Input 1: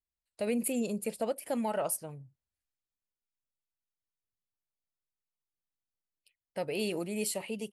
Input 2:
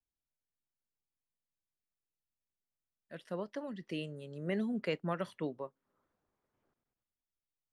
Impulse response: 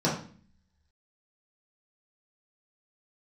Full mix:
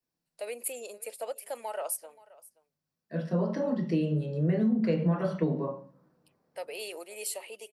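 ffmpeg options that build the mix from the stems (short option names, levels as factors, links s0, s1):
-filter_complex "[0:a]highpass=f=450:w=0.5412,highpass=f=450:w=1.3066,highshelf=f=9100:g=5,volume=0.75,asplit=3[s0][s1][s2];[s1]volume=0.0891[s3];[1:a]volume=0.794,asplit=2[s4][s5];[s5]volume=0.668[s6];[s2]apad=whole_len=340459[s7];[s4][s7]sidechaincompress=threshold=0.00224:ratio=8:attack=16:release=999[s8];[2:a]atrim=start_sample=2205[s9];[s6][s9]afir=irnorm=-1:irlink=0[s10];[s3]aecho=0:1:527:1[s11];[s0][s8][s10][s11]amix=inputs=4:normalize=0,acompressor=threshold=0.0708:ratio=6"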